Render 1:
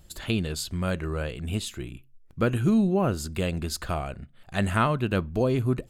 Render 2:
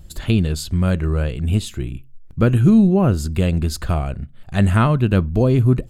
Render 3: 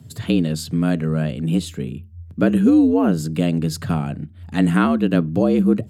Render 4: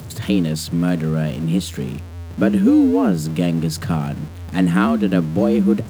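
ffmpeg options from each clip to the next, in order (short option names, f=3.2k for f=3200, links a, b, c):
-af "lowshelf=f=250:g=11,volume=3dB"
-af "afreqshift=79,bandreject=f=790:w=13,volume=-1.5dB"
-af "aeval=exprs='val(0)+0.5*0.0282*sgn(val(0))':c=same"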